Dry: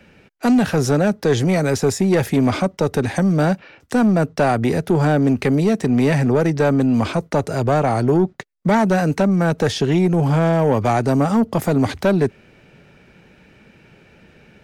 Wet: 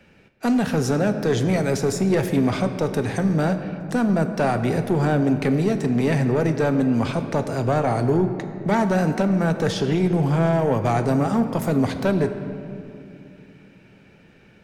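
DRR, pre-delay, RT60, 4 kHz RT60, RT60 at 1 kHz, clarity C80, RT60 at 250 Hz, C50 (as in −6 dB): 7.5 dB, 6 ms, 2.6 s, 1.6 s, 2.3 s, 9.5 dB, 3.8 s, 9.0 dB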